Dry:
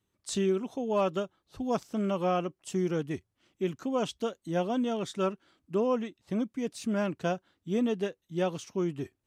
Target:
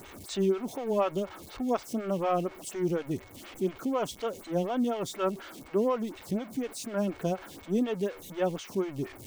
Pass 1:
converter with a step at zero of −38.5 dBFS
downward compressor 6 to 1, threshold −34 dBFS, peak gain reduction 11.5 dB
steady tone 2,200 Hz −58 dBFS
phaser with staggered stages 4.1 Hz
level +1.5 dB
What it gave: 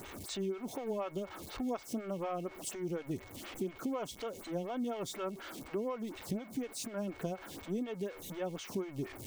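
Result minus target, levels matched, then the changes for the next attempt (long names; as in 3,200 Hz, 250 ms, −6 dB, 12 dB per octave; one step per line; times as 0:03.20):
downward compressor: peak gain reduction +11.5 dB
remove: downward compressor 6 to 1, threshold −34 dBFS, peak gain reduction 11.5 dB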